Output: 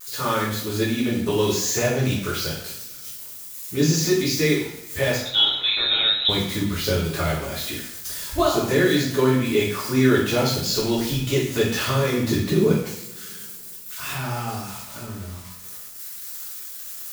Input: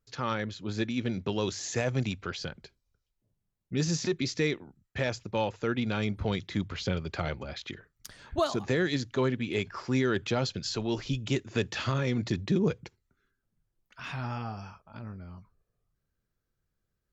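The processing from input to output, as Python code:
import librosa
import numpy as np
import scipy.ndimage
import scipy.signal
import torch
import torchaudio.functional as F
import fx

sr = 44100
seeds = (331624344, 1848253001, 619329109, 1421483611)

y = x + 0.5 * 10.0 ** (-32.5 / 20.0) * np.diff(np.sign(x), prepend=np.sign(x[:1]))
y = fx.freq_invert(y, sr, carrier_hz=3900, at=(5.16, 6.29))
y = fx.rev_double_slope(y, sr, seeds[0], early_s=0.61, late_s=2.8, knee_db=-25, drr_db=-8.0)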